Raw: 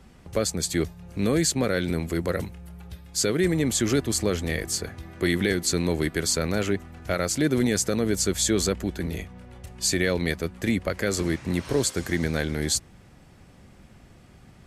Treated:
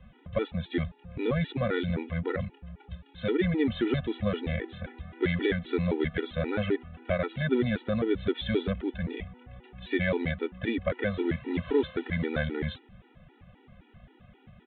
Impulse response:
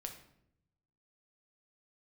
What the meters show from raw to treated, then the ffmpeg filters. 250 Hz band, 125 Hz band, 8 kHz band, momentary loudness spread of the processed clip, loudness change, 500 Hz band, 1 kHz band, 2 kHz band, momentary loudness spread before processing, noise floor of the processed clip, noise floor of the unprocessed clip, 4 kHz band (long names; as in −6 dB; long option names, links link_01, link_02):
−4.0 dB, −3.5 dB, below −40 dB, 12 LU, −5.0 dB, −3.0 dB, −4.0 dB, −4.0 dB, 9 LU, −60 dBFS, −52 dBFS, −10.5 dB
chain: -af "aresample=8000,aresample=44100,afftfilt=real='re*gt(sin(2*PI*3.8*pts/sr)*(1-2*mod(floor(b*sr/1024/250),2)),0)':imag='im*gt(sin(2*PI*3.8*pts/sr)*(1-2*mod(floor(b*sr/1024/250),2)),0)':win_size=1024:overlap=0.75"